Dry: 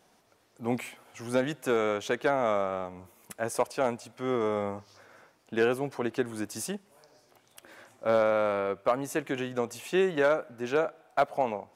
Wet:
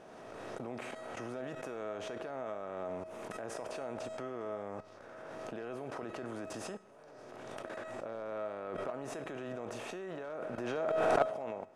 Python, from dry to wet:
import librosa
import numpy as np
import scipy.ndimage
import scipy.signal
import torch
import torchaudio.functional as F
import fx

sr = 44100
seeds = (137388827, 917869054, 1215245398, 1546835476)

y = fx.bin_compress(x, sr, power=0.6)
y = scipy.signal.sosfilt(scipy.signal.butter(2, 8000.0, 'lowpass', fs=sr, output='sos'), y)
y = fx.level_steps(y, sr, step_db=19)
y = fx.high_shelf(y, sr, hz=2300.0, db=-8.5)
y = fx.comb_fb(y, sr, f0_hz=640.0, decay_s=0.43, harmonics='all', damping=0.0, mix_pct=80)
y = fx.pre_swell(y, sr, db_per_s=22.0)
y = y * 10.0 ** (9.5 / 20.0)